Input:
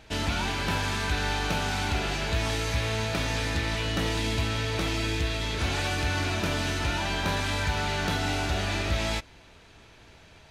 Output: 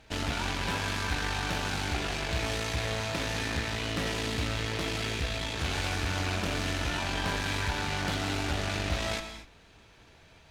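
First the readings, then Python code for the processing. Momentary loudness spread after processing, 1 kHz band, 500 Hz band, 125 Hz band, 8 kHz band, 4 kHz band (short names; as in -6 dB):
1 LU, -3.5 dB, -3.0 dB, -4.0 dB, -2.0 dB, -2.5 dB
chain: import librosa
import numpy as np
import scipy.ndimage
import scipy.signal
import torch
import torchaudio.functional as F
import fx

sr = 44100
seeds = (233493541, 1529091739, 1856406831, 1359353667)

y = fx.quant_companded(x, sr, bits=8)
y = fx.cheby_harmonics(y, sr, harmonics=(6,), levels_db=(-16,), full_scale_db=-15.5)
y = fx.rev_gated(y, sr, seeds[0], gate_ms=270, shape='flat', drr_db=7.0)
y = fx.doppler_dist(y, sr, depth_ms=0.22)
y = y * 10.0 ** (-4.5 / 20.0)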